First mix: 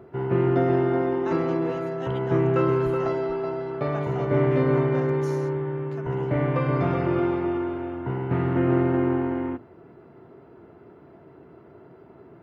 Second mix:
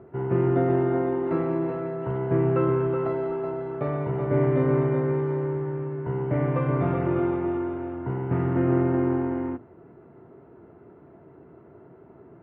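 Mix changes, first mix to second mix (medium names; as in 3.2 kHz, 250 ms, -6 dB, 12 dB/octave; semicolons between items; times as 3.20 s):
speech -11.0 dB; master: add distance through air 470 m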